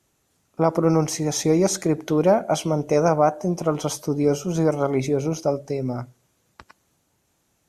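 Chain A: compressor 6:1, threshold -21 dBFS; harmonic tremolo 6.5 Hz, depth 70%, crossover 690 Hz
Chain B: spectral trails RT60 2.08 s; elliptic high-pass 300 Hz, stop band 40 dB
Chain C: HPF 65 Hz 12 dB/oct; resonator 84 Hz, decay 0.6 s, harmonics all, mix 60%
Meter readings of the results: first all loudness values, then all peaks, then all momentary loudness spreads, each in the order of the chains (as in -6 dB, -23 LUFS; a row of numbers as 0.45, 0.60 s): -30.5, -19.0, -28.5 LUFS; -12.5, -4.0, -10.5 dBFS; 3, 8, 7 LU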